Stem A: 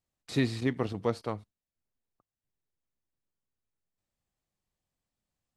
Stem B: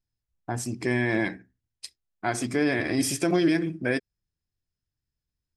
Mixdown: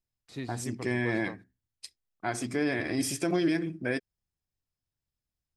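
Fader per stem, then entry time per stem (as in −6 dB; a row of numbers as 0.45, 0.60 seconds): −11.0, −4.5 decibels; 0.00, 0.00 seconds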